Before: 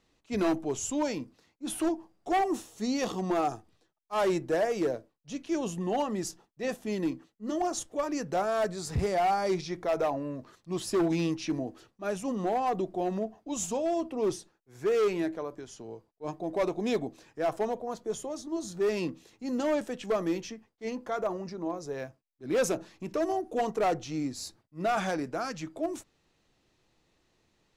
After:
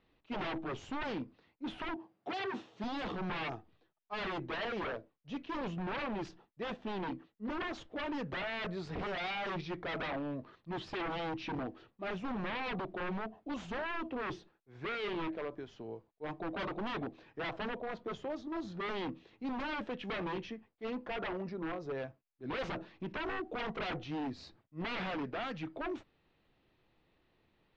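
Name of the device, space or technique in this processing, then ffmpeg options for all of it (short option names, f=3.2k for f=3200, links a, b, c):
synthesiser wavefolder: -filter_complex "[0:a]aeval=exprs='0.0282*(abs(mod(val(0)/0.0282+3,4)-2)-1)':c=same,lowpass=f=3.6k:w=0.5412,lowpass=f=3.6k:w=1.3066,asettb=1/sr,asplit=3[a][b][c];[a]atrim=end=1.964[d];[b]atrim=start=1.96:end=2.84,asetpts=PTS-STARTPTS,afade=t=in:d=0.004:c=qsin,afade=t=out:st=0.876:d=0.004:c=qsin,highpass=f=110:w=0.5412,highpass=f=110:w=1.3066[e];[c]atrim=start=2.836[f];[d][e]acrossfade=d=0.004:c1=hsin:c2=qsin[g];[g][f]acrossfade=d=0.004:c1=qsin:c2=hsin,volume=-1.5dB"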